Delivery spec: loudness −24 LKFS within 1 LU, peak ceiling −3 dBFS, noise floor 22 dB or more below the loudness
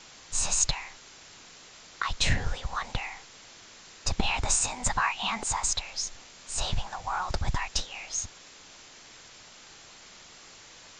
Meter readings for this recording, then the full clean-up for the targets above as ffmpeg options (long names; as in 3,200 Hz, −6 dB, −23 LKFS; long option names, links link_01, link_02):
background noise floor −51 dBFS; target noise floor −52 dBFS; integrated loudness −29.5 LKFS; sample peak −11.5 dBFS; target loudness −24.0 LKFS
→ -af "afftdn=noise_reduction=6:noise_floor=-51"
-af "volume=5.5dB"